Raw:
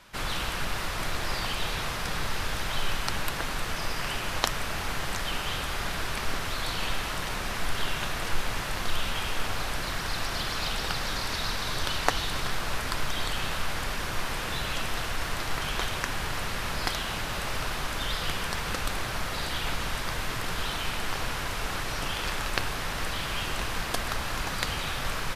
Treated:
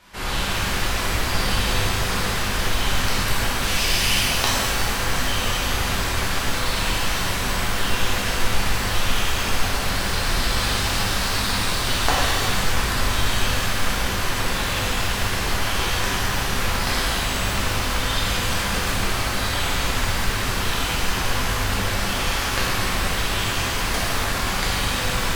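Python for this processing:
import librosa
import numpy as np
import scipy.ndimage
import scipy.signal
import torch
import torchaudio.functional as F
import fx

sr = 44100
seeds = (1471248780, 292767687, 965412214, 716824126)

y = fx.high_shelf_res(x, sr, hz=2000.0, db=6.5, q=1.5, at=(3.62, 4.2))
y = fx.rev_shimmer(y, sr, seeds[0], rt60_s=1.9, semitones=12, shimmer_db=-8, drr_db=-7.5)
y = y * 10.0 ** (-1.0 / 20.0)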